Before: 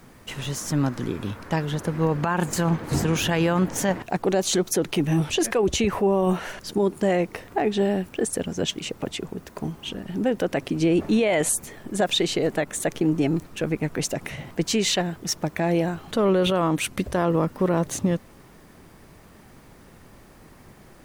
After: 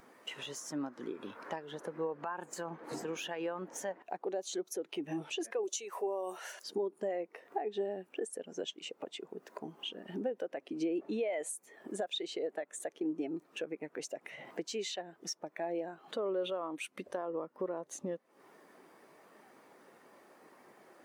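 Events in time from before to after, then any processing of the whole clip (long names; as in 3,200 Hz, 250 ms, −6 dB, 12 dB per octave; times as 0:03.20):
0:05.63–0:06.64: bass and treble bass −13 dB, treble +13 dB
whole clip: high-pass filter 400 Hz 12 dB per octave; downward compressor 4 to 1, threshold −42 dBFS; every bin expanded away from the loudest bin 1.5 to 1; level +1 dB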